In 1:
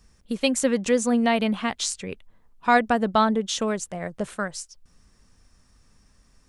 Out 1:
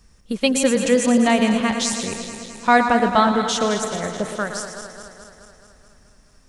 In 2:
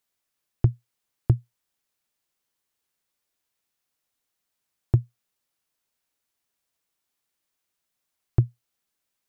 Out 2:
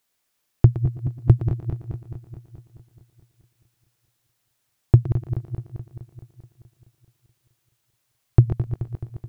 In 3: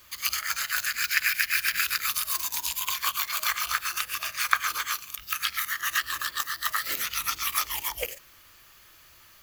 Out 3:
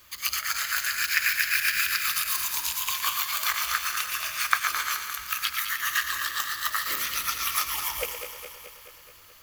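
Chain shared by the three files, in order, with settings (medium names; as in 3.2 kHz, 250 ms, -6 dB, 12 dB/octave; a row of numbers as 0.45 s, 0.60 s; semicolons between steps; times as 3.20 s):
backward echo that repeats 107 ms, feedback 79%, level -9.5 dB; thinning echo 116 ms, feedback 46%, high-pass 180 Hz, level -11 dB; peak normalisation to -2 dBFS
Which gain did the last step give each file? +3.5 dB, +6.5 dB, -0.5 dB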